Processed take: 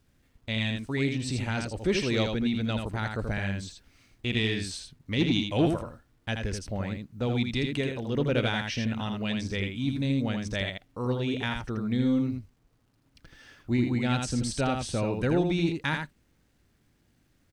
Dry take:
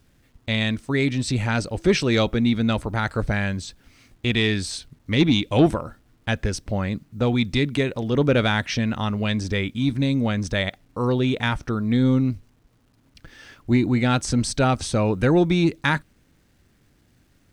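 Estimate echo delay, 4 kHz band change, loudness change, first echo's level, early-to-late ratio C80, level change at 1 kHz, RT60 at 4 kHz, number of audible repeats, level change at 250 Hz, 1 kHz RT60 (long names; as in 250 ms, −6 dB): 81 ms, −5.5 dB, −6.5 dB, −5.0 dB, no reverb audible, −8.0 dB, no reverb audible, 1, −6.5 dB, no reverb audible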